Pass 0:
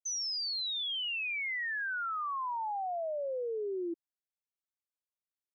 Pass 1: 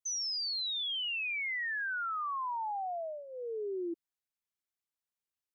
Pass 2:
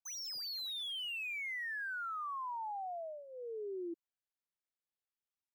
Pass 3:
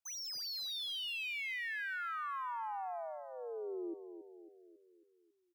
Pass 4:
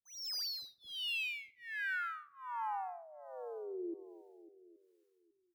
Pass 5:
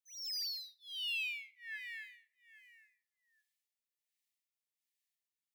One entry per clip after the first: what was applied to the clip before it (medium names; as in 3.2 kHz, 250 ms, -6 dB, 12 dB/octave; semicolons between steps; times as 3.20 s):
peaking EQ 550 Hz -13.5 dB 0.23 oct
median filter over 5 samples; trim -5 dB
feedback delay 274 ms, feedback 53%, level -10 dB
harmonic tremolo 1.3 Hz, depth 100%, crossover 440 Hz; on a send at -18.5 dB: reverberation RT60 0.60 s, pre-delay 52 ms; on the sum: trim +3.5 dB
brick-wall FIR high-pass 1.7 kHz